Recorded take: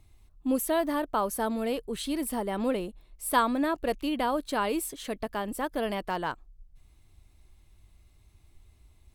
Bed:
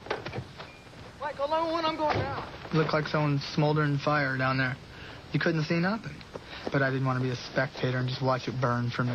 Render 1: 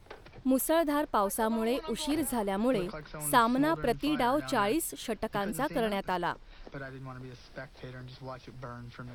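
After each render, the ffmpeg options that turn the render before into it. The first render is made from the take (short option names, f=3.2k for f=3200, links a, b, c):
-filter_complex "[1:a]volume=-15.5dB[a];[0:a][a]amix=inputs=2:normalize=0"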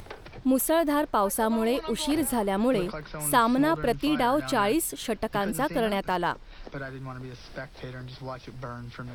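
-filter_complex "[0:a]asplit=2[a][b];[b]alimiter=limit=-22dB:level=0:latency=1,volume=-2dB[c];[a][c]amix=inputs=2:normalize=0,acompressor=mode=upward:threshold=-38dB:ratio=2.5"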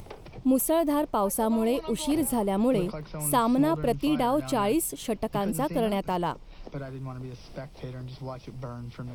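-af "equalizer=f=160:t=o:w=0.67:g=4,equalizer=f=1.6k:t=o:w=0.67:g=-11,equalizer=f=4k:t=o:w=0.67:g=-5"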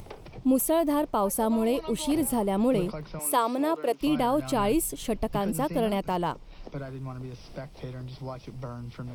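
-filter_complex "[0:a]asettb=1/sr,asplit=3[a][b][c];[a]atrim=end=3.194[d];[b]atrim=start=3.19:end=4.01,asetpts=PTS-STARTPTS,afade=t=in:d=0.004:c=qsin,afade=t=out:st=0.816:d=0.004:c=qsin,highpass=f=310:w=0.5412,highpass=f=310:w=1.3066[e];[c]atrim=start=4.006[f];[d][e]acrossfade=d=0.004:c1=hsin:c2=qsin[g];[g][f]acrossfade=d=0.004:c1=qsin:c2=hsin,asettb=1/sr,asplit=3[h][i][j];[h]atrim=end=4.564[k];[i]atrim=start=4.56:end=5.37,asetpts=PTS-STARTPTS,afade=t=in:d=0.004:c=qsin,afade=t=out:st=0.806:d=0.004:c=qsin,lowshelf=f=61:g=11[l];[j]atrim=start=5.366[m];[k][l]acrossfade=d=0.004:c1=hsin:c2=qsin[n];[n][m]acrossfade=d=0.004:c1=qsin:c2=hsin"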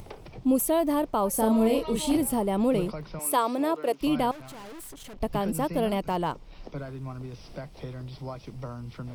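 -filter_complex "[0:a]asettb=1/sr,asplit=3[a][b][c];[a]atrim=end=1.304[d];[b]atrim=start=1.3:end=2.17,asetpts=PTS-STARTPTS,afade=t=in:d=0.004:c=qsin,afade=t=out:st=0.866:d=0.004:c=qsin,asplit=2[e][f];[f]adelay=36,volume=-3.5dB[g];[e][g]amix=inputs=2:normalize=0,atrim=end_sample=38367[h];[c]atrim=start=2.166[i];[d][h]acrossfade=d=0.004:c1=hsin:c2=qsin[j];[j][i]acrossfade=d=0.004:c1=qsin:c2=hsin,asettb=1/sr,asplit=3[k][l][m];[k]atrim=end=4.314[n];[l]atrim=start=4.31:end=5.21,asetpts=PTS-STARTPTS,afade=t=in:d=0.004:c=qsin,afade=t=out:st=0.896:d=0.004:c=qsin,aeval=exprs='(tanh(126*val(0)+0.5)-tanh(0.5))/126':c=same[o];[m]atrim=start=5.206[p];[n][o]acrossfade=d=0.004:c1=hsin:c2=qsin[q];[q][p]acrossfade=d=0.004:c1=qsin:c2=hsin"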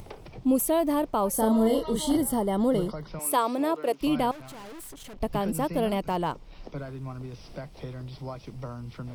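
-filter_complex "[0:a]asettb=1/sr,asplit=3[a][b][c];[a]atrim=end=1.344[d];[b]atrim=start=1.34:end=3.08,asetpts=PTS-STARTPTS,afade=t=in:d=0.004:c=qsin,afade=t=out:st=1.736:d=0.004:c=qsin,asuperstop=centerf=2500:order=20:qfactor=3.9[e];[c]atrim=start=3.076[f];[d][e]acrossfade=d=0.004:c1=hsin:c2=qsin[g];[g][f]acrossfade=d=0.004:c1=qsin:c2=hsin"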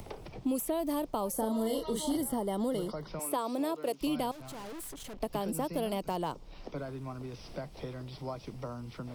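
-filter_complex "[0:a]acrossover=split=210|1300|3100[a][b][c][d];[a]acompressor=threshold=-45dB:ratio=4[e];[b]acompressor=threshold=-31dB:ratio=4[f];[c]acompressor=threshold=-56dB:ratio=4[g];[d]acompressor=threshold=-38dB:ratio=4[h];[e][f][g][h]amix=inputs=4:normalize=0"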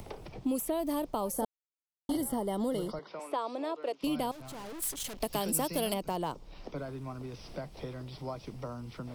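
-filter_complex "[0:a]asettb=1/sr,asplit=3[a][b][c];[a]atrim=end=2.994[d];[b]atrim=start=2.99:end=4.04,asetpts=PTS-STARTPTS,afade=t=in:d=0.004:c=qsin,afade=t=out:st=1.046:d=0.004:c=qsin,highpass=380,lowpass=4.3k[e];[c]atrim=start=4.036[f];[d][e]acrossfade=d=0.004:c1=hsin:c2=qsin[g];[g][f]acrossfade=d=0.004:c1=qsin:c2=hsin,asettb=1/sr,asplit=3[h][i][j];[h]atrim=end=4.824[k];[i]atrim=start=4.82:end=5.94,asetpts=PTS-STARTPTS,afade=t=in:d=0.004:c=qsin,afade=t=out:st=1.116:d=0.004:c=qsin,highshelf=f=2.3k:g=11.5[l];[j]atrim=start=5.936[m];[k][l]acrossfade=d=0.004:c1=hsin:c2=qsin[n];[n][m]acrossfade=d=0.004:c1=qsin:c2=hsin,asplit=3[o][p][q];[o]atrim=end=1.45,asetpts=PTS-STARTPTS,afade=t=out:st=1.446:d=0.004:c=hsin[r];[p]atrim=start=1.45:end=2.09,asetpts=PTS-STARTPTS,volume=0[s];[q]atrim=start=2.09,asetpts=PTS-STARTPTS,afade=t=in:d=0.004:c=hsin[t];[r][s][t]concat=n=3:v=0:a=1"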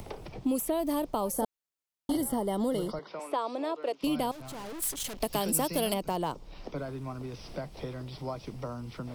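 -af "volume=2.5dB"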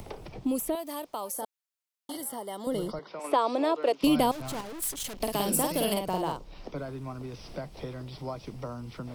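-filter_complex "[0:a]asettb=1/sr,asplit=3[a][b][c];[a]atrim=end=0.754[d];[b]atrim=start=0.75:end=2.67,asetpts=PTS-STARTPTS,afade=t=in:d=0.004:c=qsin,afade=t=out:st=1.916:d=0.004:c=qsin,highpass=f=990:p=1[e];[c]atrim=start=2.666[f];[d][e]acrossfade=d=0.004:c1=hsin:c2=qsin[g];[g][f]acrossfade=d=0.004:c1=qsin:c2=hsin,asettb=1/sr,asplit=3[h][i][j];[h]atrim=end=3.244[k];[i]atrim=start=3.24:end=4.61,asetpts=PTS-STARTPTS,afade=t=in:d=0.004:c=qsin,afade=t=out:st=1.366:d=0.004:c=qsin,acontrast=65[l];[j]atrim=start=4.606[m];[k][l]acrossfade=d=0.004:c1=hsin:c2=qsin[n];[n][m]acrossfade=d=0.004:c1=qsin:c2=hsin,asettb=1/sr,asplit=3[o][p][q];[o]atrim=end=5.154[r];[p]atrim=start=5.15:end=6.44,asetpts=PTS-STARTPTS,afade=t=in:d=0.004:c=qsin,afade=t=out:st=1.286:d=0.004:c=qsin,asplit=2[s][t];[t]adelay=49,volume=-4dB[u];[s][u]amix=inputs=2:normalize=0,atrim=end_sample=56889[v];[q]atrim=start=6.436[w];[r][v]acrossfade=d=0.004:c1=hsin:c2=qsin[x];[x][w]acrossfade=d=0.004:c1=qsin:c2=hsin"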